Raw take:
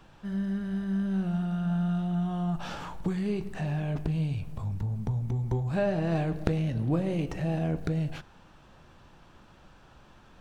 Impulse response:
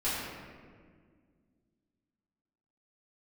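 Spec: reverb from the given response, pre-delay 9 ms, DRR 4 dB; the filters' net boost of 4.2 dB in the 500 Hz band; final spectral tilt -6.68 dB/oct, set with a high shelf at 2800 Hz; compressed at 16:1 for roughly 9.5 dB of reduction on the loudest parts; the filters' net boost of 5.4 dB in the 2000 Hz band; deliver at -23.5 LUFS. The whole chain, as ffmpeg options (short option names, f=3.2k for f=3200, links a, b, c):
-filter_complex "[0:a]equalizer=f=500:t=o:g=5,equalizer=f=2k:t=o:g=5,highshelf=f=2.8k:g=4.5,acompressor=threshold=-30dB:ratio=16,asplit=2[a][b];[1:a]atrim=start_sample=2205,adelay=9[c];[b][c]afir=irnorm=-1:irlink=0,volume=-12.5dB[d];[a][d]amix=inputs=2:normalize=0,volume=9.5dB"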